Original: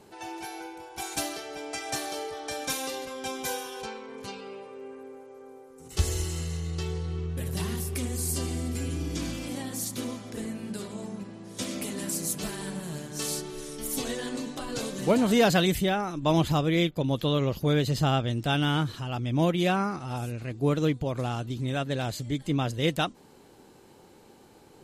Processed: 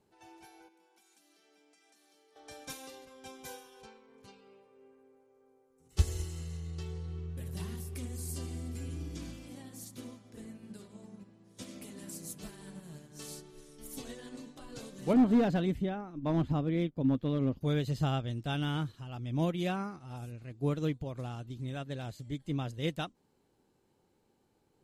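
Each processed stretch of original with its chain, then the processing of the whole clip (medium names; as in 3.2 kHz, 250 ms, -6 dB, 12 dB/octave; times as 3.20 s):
0.68–2.36 s: steep high-pass 180 Hz 96 dB/octave + dynamic bell 680 Hz, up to -8 dB, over -49 dBFS, Q 0.77 + compression 12:1, threshold -43 dBFS
15.13–17.61 s: low-pass 1.3 kHz 6 dB/octave + peaking EQ 260 Hz +10.5 dB 0.28 oct + hard clipper -15.5 dBFS
whole clip: bass shelf 210 Hz +6 dB; upward expansion 1.5:1, over -42 dBFS; trim -6 dB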